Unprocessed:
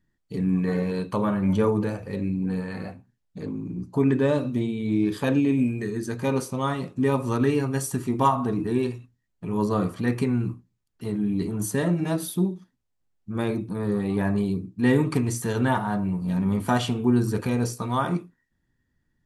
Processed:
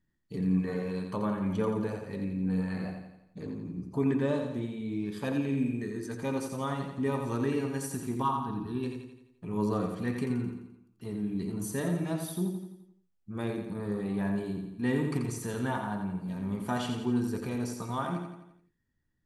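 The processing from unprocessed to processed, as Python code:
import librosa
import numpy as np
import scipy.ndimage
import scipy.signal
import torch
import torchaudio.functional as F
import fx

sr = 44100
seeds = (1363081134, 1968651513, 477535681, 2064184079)

y = fx.fixed_phaser(x, sr, hz=2100.0, stages=6, at=(8.21, 8.82), fade=0.02)
y = fx.rider(y, sr, range_db=5, speed_s=2.0)
y = fx.echo_feedback(y, sr, ms=86, feedback_pct=51, wet_db=-6.0)
y = y * librosa.db_to_amplitude(-8.5)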